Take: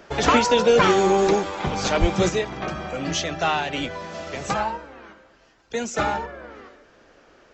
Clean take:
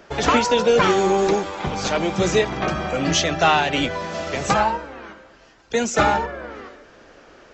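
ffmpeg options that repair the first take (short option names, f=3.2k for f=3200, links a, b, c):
-filter_complex "[0:a]asplit=3[a][b][c];[a]afade=t=out:st=2:d=0.02[d];[b]highpass=f=140:w=0.5412,highpass=f=140:w=1.3066,afade=t=in:st=2:d=0.02,afade=t=out:st=2.12:d=0.02[e];[c]afade=t=in:st=2.12:d=0.02[f];[d][e][f]amix=inputs=3:normalize=0,asetnsamples=n=441:p=0,asendcmd='2.29 volume volume 6dB',volume=0dB"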